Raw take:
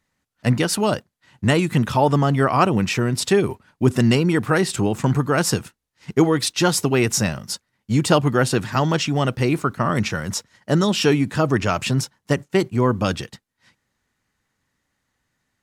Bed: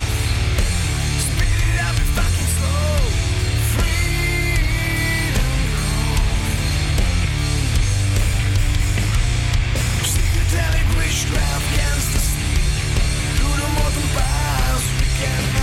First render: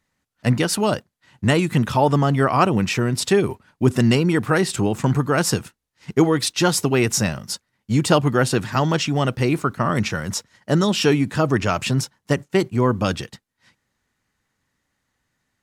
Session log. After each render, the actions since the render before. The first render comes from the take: nothing audible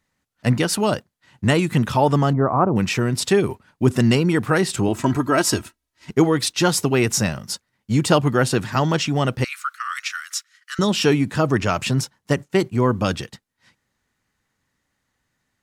2.33–2.76 LPF 1200 Hz 24 dB/oct; 4.88–6.1 comb 3.1 ms, depth 64%; 9.44–10.79 steep high-pass 1200 Hz 72 dB/oct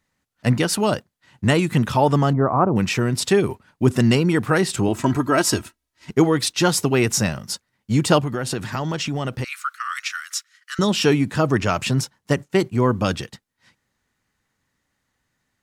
8.19–9.65 compressor 5:1, threshold -21 dBFS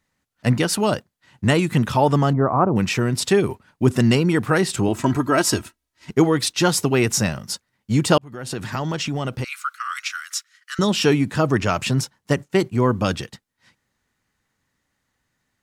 8.18–8.67 fade in; 9.21–10.22 notch 1800 Hz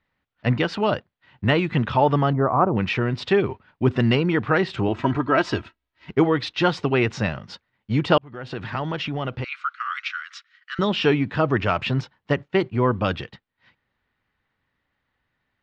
LPF 3600 Hz 24 dB/oct; bell 200 Hz -4 dB 1.7 oct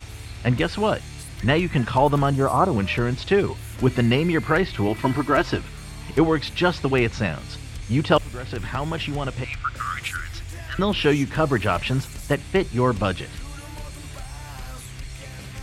add bed -17.5 dB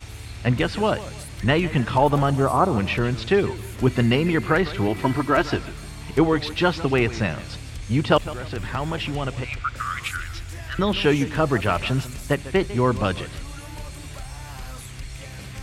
warbling echo 0.151 s, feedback 35%, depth 128 cents, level -16 dB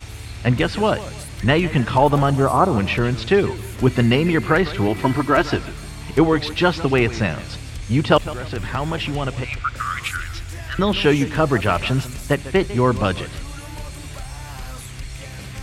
gain +3 dB

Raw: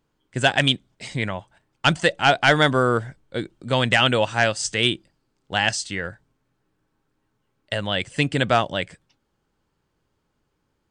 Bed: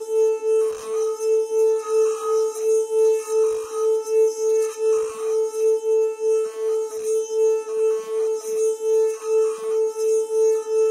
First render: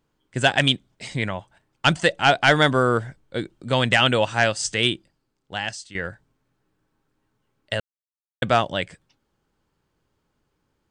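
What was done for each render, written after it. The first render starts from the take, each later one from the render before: 4.74–5.95 fade out, to -13 dB; 7.8–8.42 mute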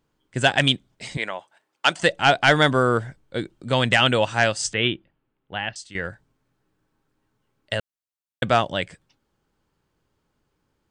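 1.17–2 HPF 420 Hz; 4.73–5.76 steep low-pass 3300 Hz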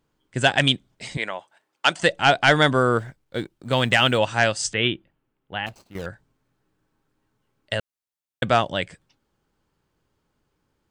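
2.98–4.18 G.711 law mismatch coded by A; 5.66–6.06 median filter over 25 samples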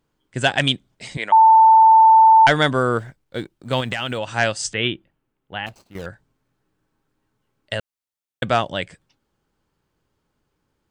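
1.32–2.47 bleep 889 Hz -7 dBFS; 3.8–4.33 compressor, threshold -21 dBFS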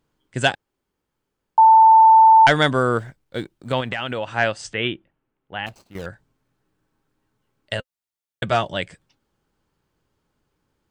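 0.55–1.58 room tone; 3.72–5.59 tone controls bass -3 dB, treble -12 dB; 7.77–8.77 notch comb 260 Hz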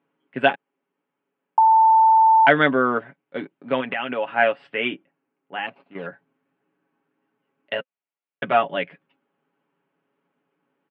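elliptic band-pass 190–2700 Hz, stop band 40 dB; comb 7.2 ms, depth 61%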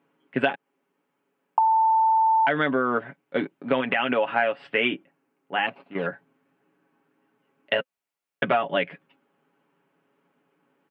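in parallel at -2 dB: limiter -12 dBFS, peak gain reduction 10 dB; on the sum: compressor 12:1, threshold -18 dBFS, peak gain reduction 12 dB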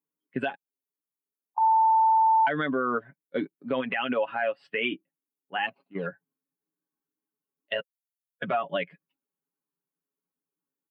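per-bin expansion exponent 1.5; limiter -17 dBFS, peak gain reduction 7.5 dB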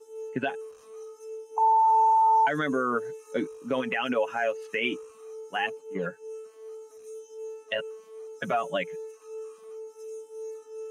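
add bed -20 dB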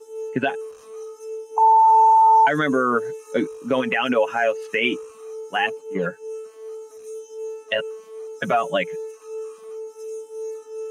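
gain +7 dB

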